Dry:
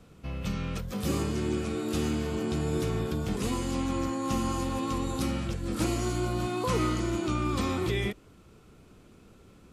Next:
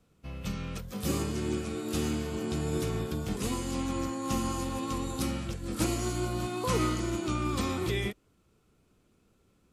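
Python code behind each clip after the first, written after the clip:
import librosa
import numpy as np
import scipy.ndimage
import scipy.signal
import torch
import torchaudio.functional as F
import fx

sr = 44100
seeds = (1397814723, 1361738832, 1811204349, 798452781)

y = fx.high_shelf(x, sr, hz=5700.0, db=5.5)
y = fx.upward_expand(y, sr, threshold_db=-50.0, expansion=1.5)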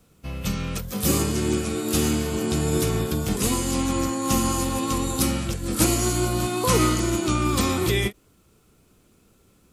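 y = fx.high_shelf(x, sr, hz=7300.0, db=10.0)
y = fx.end_taper(y, sr, db_per_s=470.0)
y = y * 10.0 ** (8.0 / 20.0)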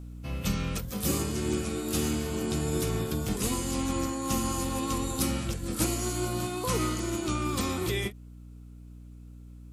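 y = fx.add_hum(x, sr, base_hz=60, snr_db=15)
y = fx.rider(y, sr, range_db=4, speed_s=0.5)
y = y * 10.0 ** (-6.5 / 20.0)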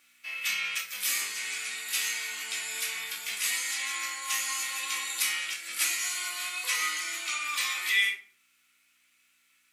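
y = fx.highpass_res(x, sr, hz=2100.0, q=3.4)
y = fx.room_shoebox(y, sr, seeds[0], volume_m3=400.0, walls='furnished', distance_m=2.4)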